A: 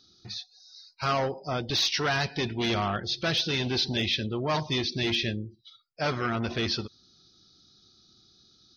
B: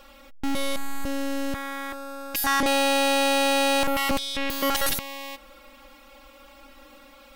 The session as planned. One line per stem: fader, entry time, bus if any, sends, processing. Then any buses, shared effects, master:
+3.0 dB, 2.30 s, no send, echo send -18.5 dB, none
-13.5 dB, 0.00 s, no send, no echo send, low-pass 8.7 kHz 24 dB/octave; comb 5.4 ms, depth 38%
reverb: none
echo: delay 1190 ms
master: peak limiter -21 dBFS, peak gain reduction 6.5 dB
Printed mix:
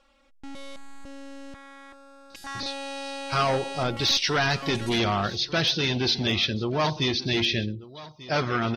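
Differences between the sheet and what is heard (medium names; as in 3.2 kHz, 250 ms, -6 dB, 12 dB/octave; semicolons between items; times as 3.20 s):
stem B: missing comb 5.4 ms, depth 38%; master: missing peak limiter -21 dBFS, peak gain reduction 6.5 dB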